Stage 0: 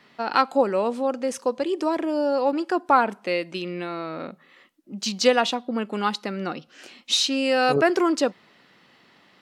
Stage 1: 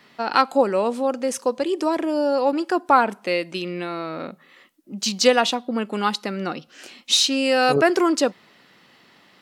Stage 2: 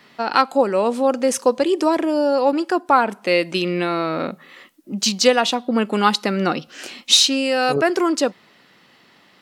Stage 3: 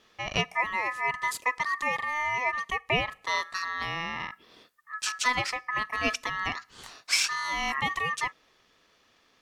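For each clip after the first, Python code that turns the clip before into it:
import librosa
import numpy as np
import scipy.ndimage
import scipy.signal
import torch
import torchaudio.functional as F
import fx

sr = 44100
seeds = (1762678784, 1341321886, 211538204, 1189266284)

y1 = fx.high_shelf(x, sr, hz=7400.0, db=7.5)
y1 = F.gain(torch.from_numpy(y1), 2.0).numpy()
y2 = fx.rider(y1, sr, range_db=5, speed_s=0.5)
y2 = F.gain(torch.from_numpy(y2), 2.5).numpy()
y3 = y2 * np.sin(2.0 * np.pi * 1500.0 * np.arange(len(y2)) / sr)
y3 = F.gain(torch.from_numpy(y3), -8.5).numpy()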